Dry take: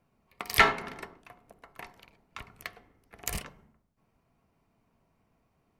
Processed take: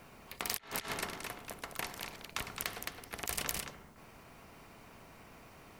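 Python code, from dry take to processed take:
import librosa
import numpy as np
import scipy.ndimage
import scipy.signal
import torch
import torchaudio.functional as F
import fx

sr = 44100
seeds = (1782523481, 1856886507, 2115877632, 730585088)

p1 = x + fx.echo_single(x, sr, ms=216, db=-11.0, dry=0)
p2 = fx.over_compress(p1, sr, threshold_db=-38.0, ratio=-0.5)
p3 = fx.spectral_comp(p2, sr, ratio=2.0)
y = F.gain(torch.from_numpy(p3), 1.0).numpy()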